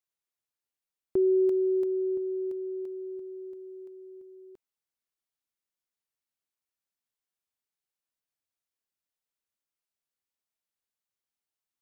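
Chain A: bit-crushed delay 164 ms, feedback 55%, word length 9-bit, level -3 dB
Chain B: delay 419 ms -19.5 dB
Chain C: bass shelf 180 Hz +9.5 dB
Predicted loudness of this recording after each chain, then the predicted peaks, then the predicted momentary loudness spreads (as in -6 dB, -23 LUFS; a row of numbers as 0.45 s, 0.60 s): -30.5 LUFS, -29.0 LUFS, -27.0 LUFS; -19.5 dBFS, -19.5 dBFS, -15.5 dBFS; 22 LU, 21 LU, 21 LU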